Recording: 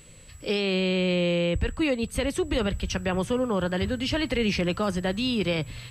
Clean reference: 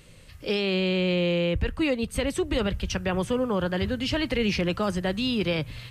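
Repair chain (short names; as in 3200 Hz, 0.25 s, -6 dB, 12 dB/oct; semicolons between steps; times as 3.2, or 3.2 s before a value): notch 7800 Hz, Q 30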